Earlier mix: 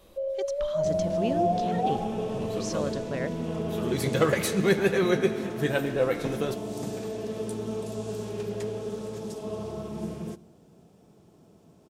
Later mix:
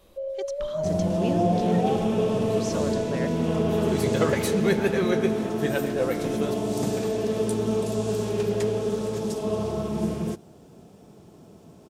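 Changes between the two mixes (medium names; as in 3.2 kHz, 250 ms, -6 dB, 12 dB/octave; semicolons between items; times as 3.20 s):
second sound +9.5 dB; reverb: off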